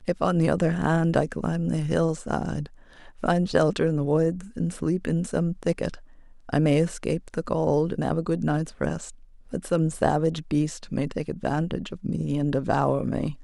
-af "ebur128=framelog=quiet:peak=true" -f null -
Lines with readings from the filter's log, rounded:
Integrated loudness:
  I:         -25.7 LUFS
  Threshold: -36.0 LUFS
Loudness range:
  LRA:         1.7 LU
  Threshold: -46.2 LUFS
  LRA low:   -27.1 LUFS
  LRA high:  -25.4 LUFS
True peak:
  Peak:       -5.0 dBFS